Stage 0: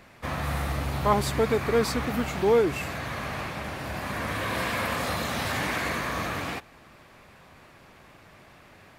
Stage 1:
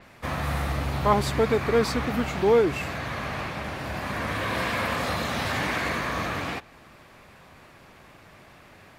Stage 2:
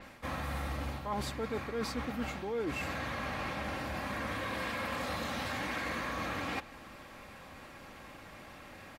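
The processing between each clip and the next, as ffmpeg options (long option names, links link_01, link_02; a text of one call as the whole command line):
ffmpeg -i in.wav -af "adynamicequalizer=threshold=0.00355:dfrequency=6800:dqfactor=0.7:tfrequency=6800:tqfactor=0.7:attack=5:release=100:ratio=0.375:range=3:mode=cutabove:tftype=highshelf,volume=1.5dB" out.wav
ffmpeg -i in.wav -af "aecho=1:1:3.7:0.36,areverse,acompressor=threshold=-34dB:ratio=6,areverse" out.wav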